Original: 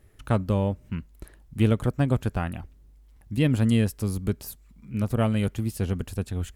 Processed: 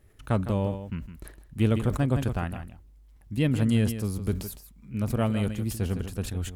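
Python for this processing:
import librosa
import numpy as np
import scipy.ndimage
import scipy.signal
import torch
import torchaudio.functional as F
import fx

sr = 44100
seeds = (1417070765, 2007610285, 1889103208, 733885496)

p1 = x + fx.echo_single(x, sr, ms=159, db=-11.0, dry=0)
p2 = fx.sustainer(p1, sr, db_per_s=110.0)
y = p2 * librosa.db_to_amplitude(-2.5)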